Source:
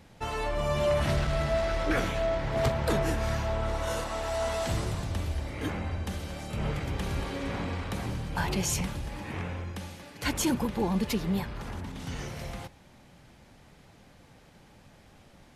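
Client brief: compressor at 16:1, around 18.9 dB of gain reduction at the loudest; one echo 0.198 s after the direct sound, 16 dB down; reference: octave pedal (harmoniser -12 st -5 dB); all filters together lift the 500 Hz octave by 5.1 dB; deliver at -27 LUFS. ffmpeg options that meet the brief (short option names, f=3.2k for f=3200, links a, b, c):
-filter_complex "[0:a]equalizer=f=500:t=o:g=7,acompressor=threshold=-37dB:ratio=16,aecho=1:1:198:0.158,asplit=2[a][b];[b]asetrate=22050,aresample=44100,atempo=2,volume=-5dB[c];[a][c]amix=inputs=2:normalize=0,volume=13.5dB"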